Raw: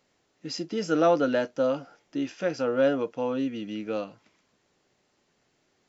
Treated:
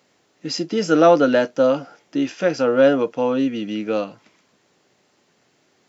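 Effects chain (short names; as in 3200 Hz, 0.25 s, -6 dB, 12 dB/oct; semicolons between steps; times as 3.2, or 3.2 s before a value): HPF 110 Hz; gain +8.5 dB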